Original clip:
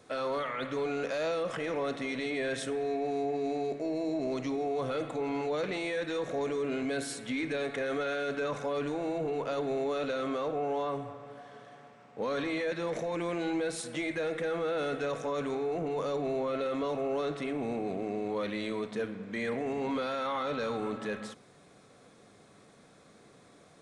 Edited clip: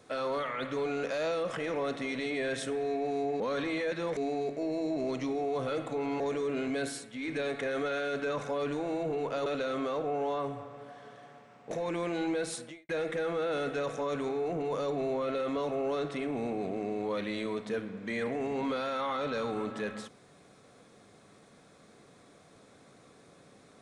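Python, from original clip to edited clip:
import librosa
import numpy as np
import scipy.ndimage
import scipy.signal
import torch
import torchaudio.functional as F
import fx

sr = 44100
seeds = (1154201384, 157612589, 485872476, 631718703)

y = fx.edit(x, sr, fx.cut(start_s=5.43, length_s=0.92),
    fx.fade_down_up(start_s=7.03, length_s=0.48, db=-9.5, fade_s=0.24),
    fx.cut(start_s=9.61, length_s=0.34),
    fx.move(start_s=12.2, length_s=0.77, to_s=3.4),
    fx.fade_out_span(start_s=13.82, length_s=0.33, curve='qua'), tone=tone)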